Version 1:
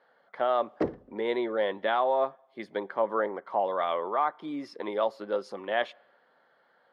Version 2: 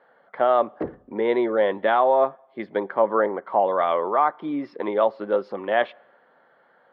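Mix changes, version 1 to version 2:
speech +8.5 dB; master: add air absorption 350 m

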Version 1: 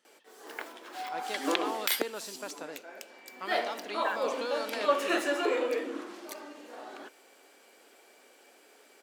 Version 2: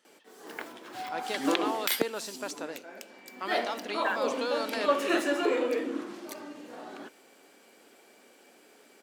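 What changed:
speech +3.5 dB; background: remove HPF 360 Hz 12 dB/oct

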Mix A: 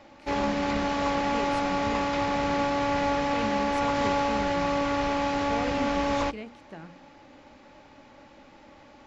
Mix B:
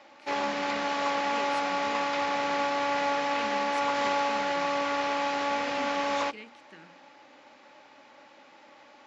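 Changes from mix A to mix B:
speech: add Butterworth band-stop 800 Hz, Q 0.71; master: add weighting filter A

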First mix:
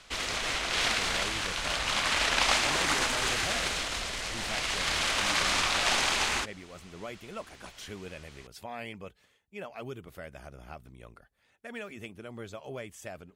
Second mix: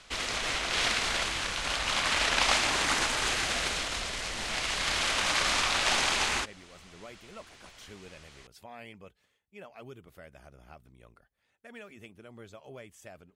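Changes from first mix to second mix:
speech -6.5 dB; background: add brick-wall FIR low-pass 12000 Hz

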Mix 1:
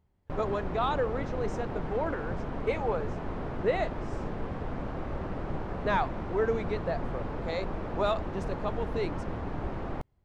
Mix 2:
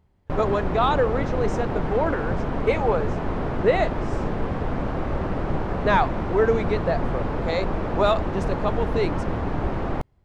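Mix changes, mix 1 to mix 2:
speech +8.0 dB; background +9.0 dB

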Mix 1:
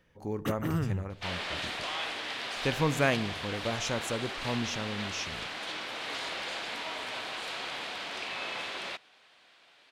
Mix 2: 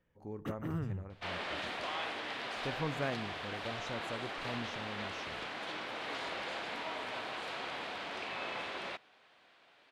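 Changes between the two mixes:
speech -9.0 dB; first sound -6.5 dB; master: add high shelf 2900 Hz -11.5 dB

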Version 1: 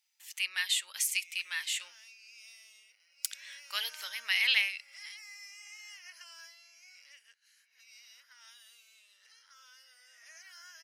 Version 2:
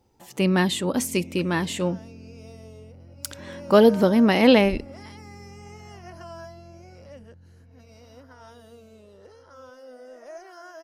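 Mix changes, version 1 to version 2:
second sound -4.5 dB; master: remove Chebyshev high-pass 2100 Hz, order 3

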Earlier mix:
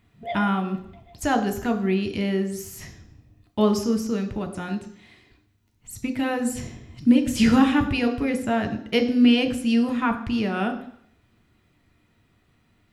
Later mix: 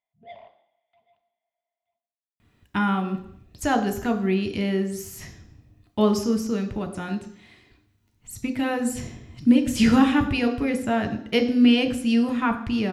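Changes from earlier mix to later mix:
speech: entry +2.40 s; background -12.0 dB

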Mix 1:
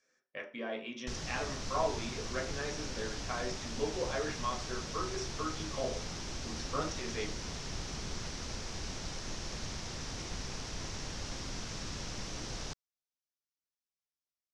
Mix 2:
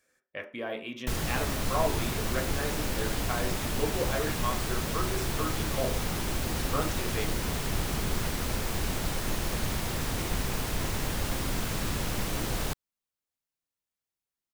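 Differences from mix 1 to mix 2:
speech: send -8.5 dB; master: remove ladder low-pass 6400 Hz, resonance 60%

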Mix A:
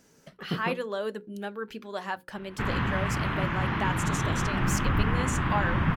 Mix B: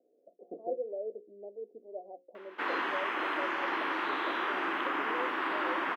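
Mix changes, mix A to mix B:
speech: add rippled Chebyshev low-pass 730 Hz, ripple 6 dB; master: add elliptic high-pass 320 Hz, stop band 70 dB

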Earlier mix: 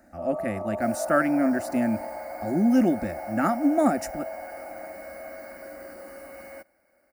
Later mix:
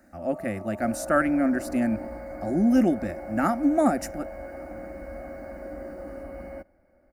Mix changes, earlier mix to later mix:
first sound -8.5 dB; second sound: add tilt -4.5 dB/oct

